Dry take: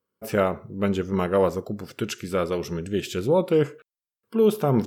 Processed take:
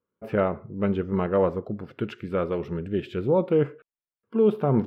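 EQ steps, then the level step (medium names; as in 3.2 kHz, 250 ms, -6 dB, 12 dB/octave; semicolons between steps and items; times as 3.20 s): distance through air 500 m; treble shelf 6.4 kHz +4.5 dB; 0.0 dB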